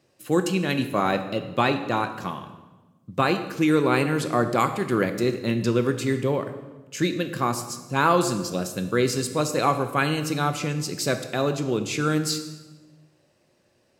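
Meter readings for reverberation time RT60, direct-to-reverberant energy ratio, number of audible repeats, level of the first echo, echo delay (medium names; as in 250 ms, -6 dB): 1.2 s, 7.5 dB, no echo, no echo, no echo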